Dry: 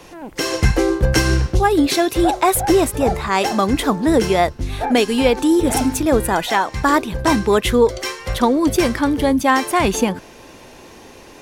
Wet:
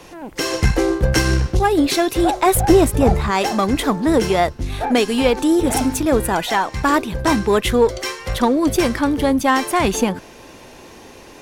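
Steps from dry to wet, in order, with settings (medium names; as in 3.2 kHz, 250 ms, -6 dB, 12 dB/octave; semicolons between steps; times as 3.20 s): 2.46–3.31 s: bass shelf 280 Hz +9 dB; in parallel at -5 dB: one-sided clip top -24 dBFS; on the sum: trim -3.5 dB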